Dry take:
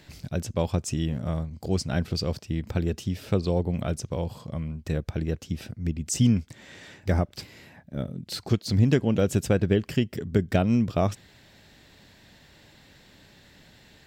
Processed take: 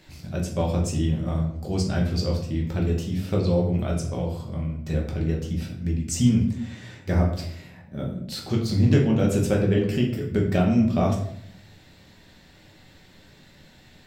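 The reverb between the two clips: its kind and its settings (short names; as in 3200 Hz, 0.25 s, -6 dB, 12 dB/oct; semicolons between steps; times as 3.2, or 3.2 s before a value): shoebox room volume 120 m³, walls mixed, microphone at 1.1 m; gain -3 dB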